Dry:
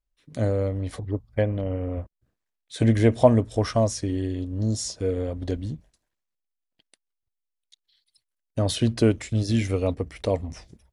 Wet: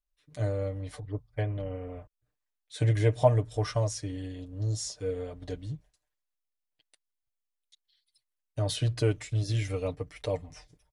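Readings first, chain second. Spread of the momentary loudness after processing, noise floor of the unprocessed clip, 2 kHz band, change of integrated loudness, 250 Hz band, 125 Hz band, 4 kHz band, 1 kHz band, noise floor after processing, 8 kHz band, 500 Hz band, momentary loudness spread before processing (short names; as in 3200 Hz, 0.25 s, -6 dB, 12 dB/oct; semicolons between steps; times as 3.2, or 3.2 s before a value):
15 LU, -83 dBFS, -5.0 dB, -6.0 dB, -13.0 dB, -3.5 dB, -5.0 dB, -5.5 dB, -85 dBFS, -5.0 dB, -6.5 dB, 14 LU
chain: bell 220 Hz -11 dB 1.4 oct; comb 6.7 ms, depth 77%; dynamic EQ 130 Hz, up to +7 dB, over -39 dBFS, Q 1.1; gain -7 dB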